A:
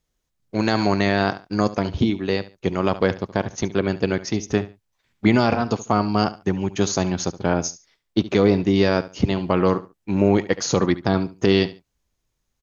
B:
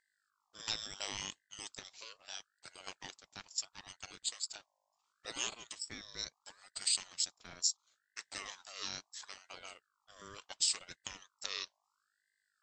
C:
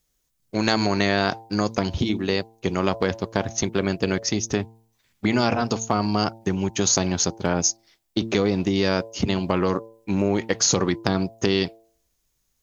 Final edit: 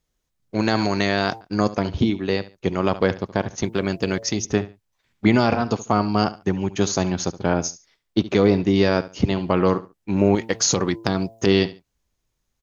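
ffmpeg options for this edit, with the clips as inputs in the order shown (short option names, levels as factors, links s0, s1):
-filter_complex "[2:a]asplit=3[s0][s1][s2];[0:a]asplit=4[s3][s4][s5][s6];[s3]atrim=end=0.852[s7];[s0]atrim=start=0.848:end=1.412[s8];[s4]atrim=start=1.408:end=3.652[s9];[s1]atrim=start=3.648:end=4.452[s10];[s5]atrim=start=4.448:end=10.352[s11];[s2]atrim=start=10.348:end=11.462[s12];[s6]atrim=start=11.458[s13];[s7][s8]acrossfade=d=0.004:c1=hsin:c2=hsin[s14];[s14][s9]acrossfade=d=0.004:c1=hsin:c2=hsin[s15];[s15][s10]acrossfade=d=0.004:c1=hsin:c2=hsin[s16];[s16][s11]acrossfade=d=0.004:c1=hsin:c2=hsin[s17];[s17][s12]acrossfade=d=0.004:c1=hsin:c2=hsin[s18];[s18][s13]acrossfade=d=0.004:c1=hsin:c2=hsin"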